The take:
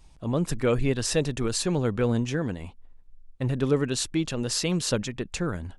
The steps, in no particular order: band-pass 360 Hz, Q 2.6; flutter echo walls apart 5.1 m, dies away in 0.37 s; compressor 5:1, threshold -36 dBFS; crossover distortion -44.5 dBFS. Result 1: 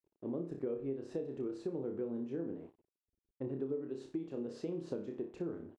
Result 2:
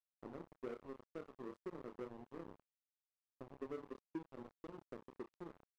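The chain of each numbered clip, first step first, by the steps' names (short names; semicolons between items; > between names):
flutter echo > crossover distortion > band-pass > compressor; flutter echo > compressor > band-pass > crossover distortion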